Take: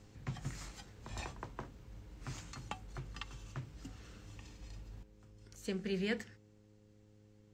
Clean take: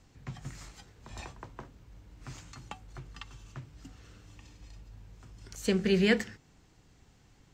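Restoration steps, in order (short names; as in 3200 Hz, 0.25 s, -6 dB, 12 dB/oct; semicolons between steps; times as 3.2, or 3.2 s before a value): de-hum 105.1 Hz, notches 5; gain 0 dB, from 5.03 s +11 dB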